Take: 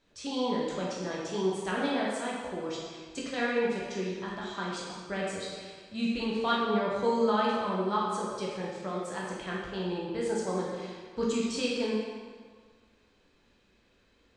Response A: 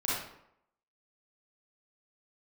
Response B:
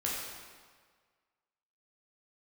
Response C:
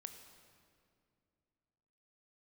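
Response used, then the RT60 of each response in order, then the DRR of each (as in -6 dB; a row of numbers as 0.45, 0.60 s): B; 0.75, 1.6, 2.4 s; -8.5, -5.5, 7.0 dB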